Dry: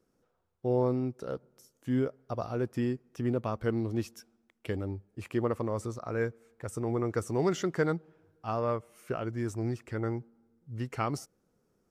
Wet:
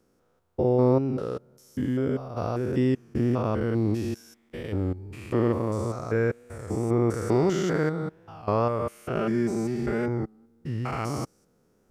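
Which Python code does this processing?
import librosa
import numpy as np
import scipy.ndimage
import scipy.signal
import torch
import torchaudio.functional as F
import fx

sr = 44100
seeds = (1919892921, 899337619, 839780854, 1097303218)

y = fx.spec_steps(x, sr, hold_ms=200)
y = fx.comb(y, sr, ms=5.0, depth=0.9, at=(9.15, 10.09))
y = fx.record_warp(y, sr, rpm=33.33, depth_cents=100.0)
y = F.gain(torch.from_numpy(y), 8.5).numpy()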